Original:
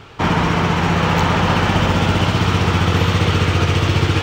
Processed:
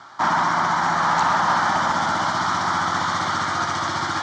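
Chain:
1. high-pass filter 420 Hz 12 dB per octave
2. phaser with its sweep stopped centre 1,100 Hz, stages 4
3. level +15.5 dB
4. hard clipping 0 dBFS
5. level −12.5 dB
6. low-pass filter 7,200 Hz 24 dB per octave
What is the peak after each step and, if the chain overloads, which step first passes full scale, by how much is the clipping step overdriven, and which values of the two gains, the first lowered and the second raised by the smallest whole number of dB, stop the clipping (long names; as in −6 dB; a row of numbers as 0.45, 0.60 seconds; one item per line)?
−7.0, −10.0, +5.5, 0.0, −12.5, −12.0 dBFS
step 3, 5.5 dB
step 3 +9.5 dB, step 5 −6.5 dB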